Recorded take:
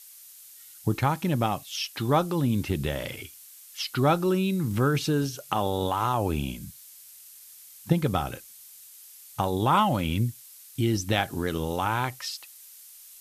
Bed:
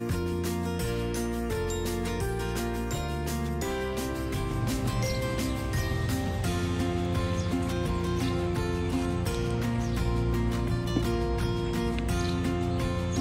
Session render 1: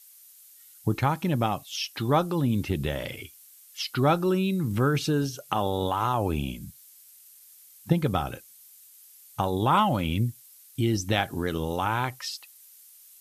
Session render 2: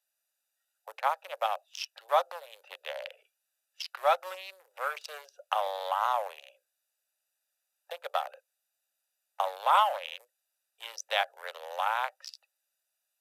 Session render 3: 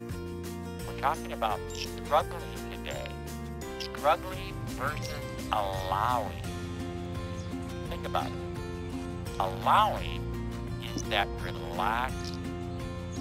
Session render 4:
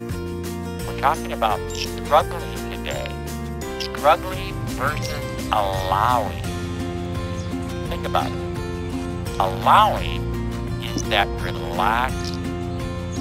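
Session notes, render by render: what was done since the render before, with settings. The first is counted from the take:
noise reduction 6 dB, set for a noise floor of -49 dBFS
local Wiener filter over 41 samples; steep high-pass 540 Hz 72 dB/octave
add bed -8 dB
trim +9.5 dB; peak limiter -2 dBFS, peak gain reduction 1 dB

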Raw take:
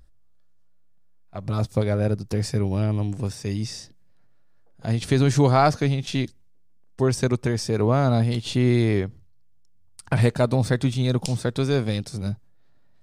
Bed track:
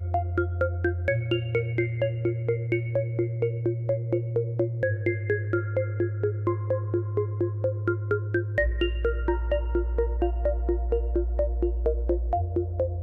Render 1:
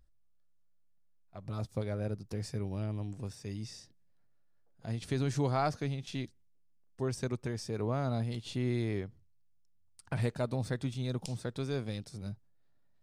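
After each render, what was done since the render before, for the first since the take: trim -13 dB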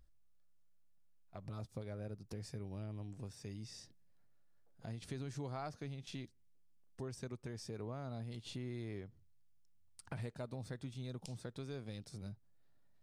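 compression 2.5:1, threshold -47 dBFS, peak gain reduction 13.5 dB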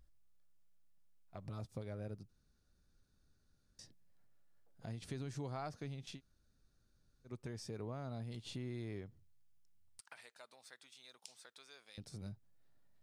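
2.29–3.79 s: room tone; 6.16–7.29 s: room tone, crossfade 0.10 s; 10.00–11.98 s: Bessel high-pass 1.5 kHz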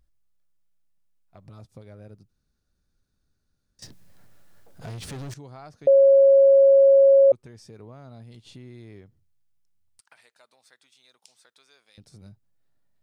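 3.82–5.34 s: waveshaping leveller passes 5; 5.87–7.32 s: bleep 548 Hz -11 dBFS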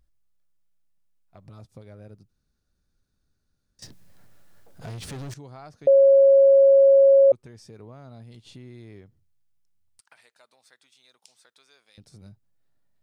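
no audible change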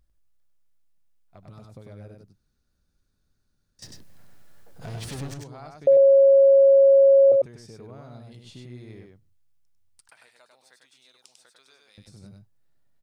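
delay 98 ms -3.5 dB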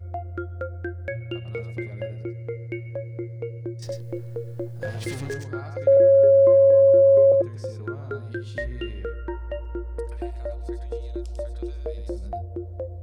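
add bed track -6 dB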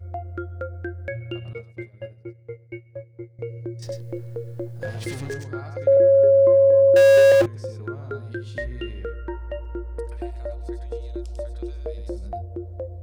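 1.53–3.39 s: expander -26 dBFS; 6.96–7.46 s: power-law waveshaper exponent 0.5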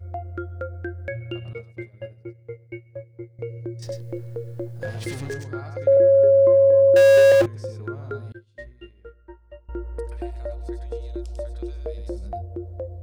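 8.32–9.69 s: expander -21 dBFS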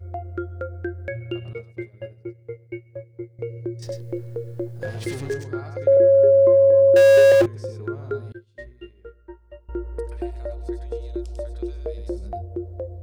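peaking EQ 390 Hz +8 dB 0.27 oct

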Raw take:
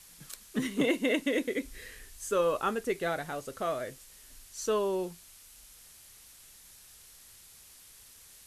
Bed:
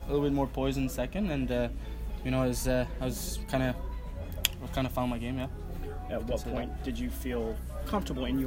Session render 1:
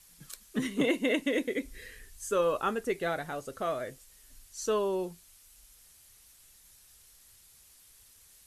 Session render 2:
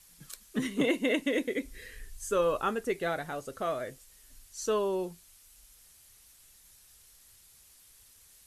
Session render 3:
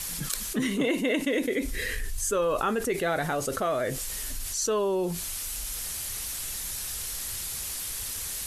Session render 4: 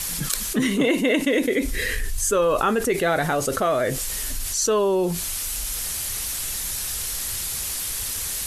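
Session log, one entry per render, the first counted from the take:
noise reduction 6 dB, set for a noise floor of -55 dBFS
1.93–2.66 s: bass shelf 68 Hz +9.5 dB
level flattener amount 70%
trim +6 dB

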